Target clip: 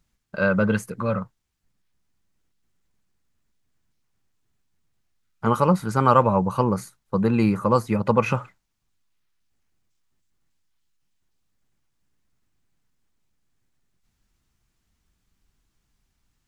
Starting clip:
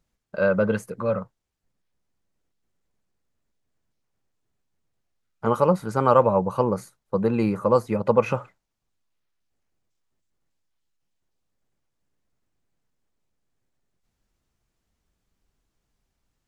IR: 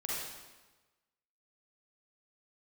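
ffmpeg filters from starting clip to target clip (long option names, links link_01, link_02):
-af "equalizer=frequency=540:width_type=o:width=1.3:gain=-8,volume=5dB"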